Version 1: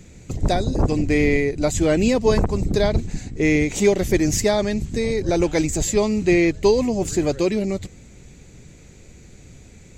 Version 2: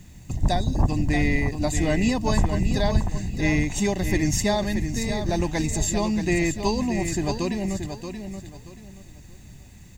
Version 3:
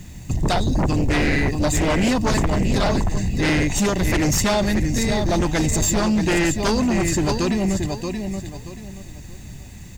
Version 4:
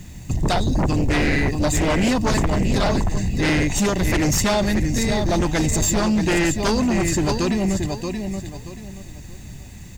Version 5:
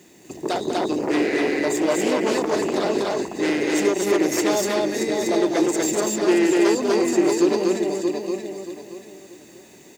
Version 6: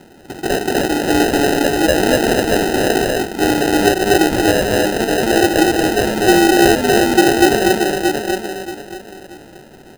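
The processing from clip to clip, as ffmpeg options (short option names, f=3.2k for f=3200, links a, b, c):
-af "aecho=1:1:1.1:0.66,aecho=1:1:629|1258|1887:0.398|0.107|0.029,acrusher=bits=8:mix=0:aa=0.000001,volume=-4.5dB"
-af "aeval=exprs='0.398*sin(PI/2*3.55*val(0)/0.398)':c=same,volume=-7dB"
-af anull
-filter_complex "[0:a]highpass=f=370:t=q:w=3.4,asplit=2[a][b];[b]aecho=0:1:195.3|244.9:0.316|0.891[c];[a][c]amix=inputs=2:normalize=0,volume=-6dB"
-af "acrusher=samples=39:mix=1:aa=0.000001,volume=6.5dB"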